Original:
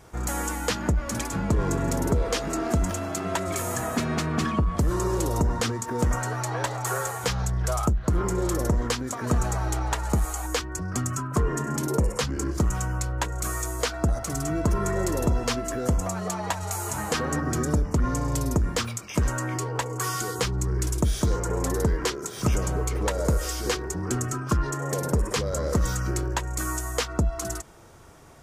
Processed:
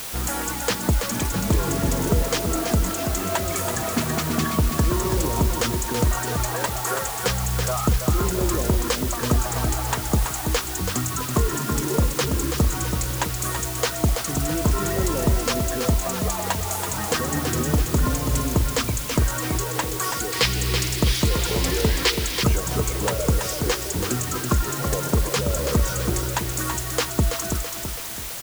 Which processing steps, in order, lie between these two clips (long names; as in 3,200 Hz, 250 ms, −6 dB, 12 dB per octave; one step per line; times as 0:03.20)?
reverb reduction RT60 0.83 s
repeating echo 330 ms, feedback 48%, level −6.5 dB
bit-depth reduction 6 bits, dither triangular
0:20.32–0:22.44: flat-topped bell 3,100 Hz +8 dB
level +3 dB